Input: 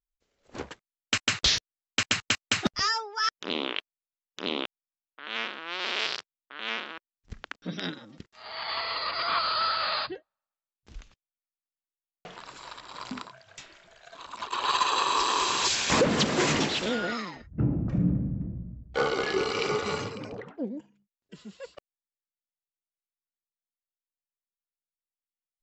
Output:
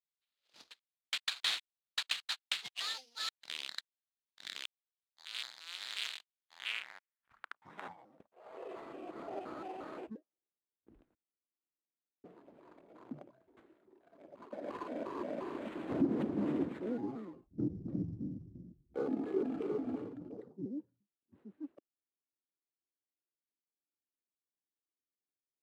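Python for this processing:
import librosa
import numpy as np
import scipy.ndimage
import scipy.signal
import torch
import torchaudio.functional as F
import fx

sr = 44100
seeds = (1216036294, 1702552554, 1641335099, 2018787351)

y = fx.pitch_trill(x, sr, semitones=-9.5, every_ms=175)
y = fx.sample_hold(y, sr, seeds[0], rate_hz=5600.0, jitter_pct=20)
y = fx.filter_sweep_bandpass(y, sr, from_hz=4000.0, to_hz=310.0, start_s=6.3, end_s=8.94, q=2.5)
y = y * librosa.db_to_amplitude(-1.5)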